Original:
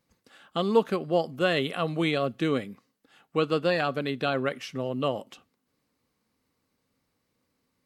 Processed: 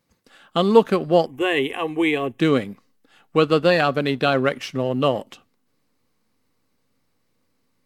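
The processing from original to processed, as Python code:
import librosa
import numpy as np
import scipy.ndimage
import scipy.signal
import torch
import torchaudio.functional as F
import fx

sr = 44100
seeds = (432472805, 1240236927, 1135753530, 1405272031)

p1 = fx.backlash(x, sr, play_db=-37.0)
p2 = x + (p1 * librosa.db_to_amplitude(-3.0))
p3 = fx.fixed_phaser(p2, sr, hz=900.0, stages=8, at=(1.26, 2.4))
y = p3 * librosa.db_to_amplitude(3.5)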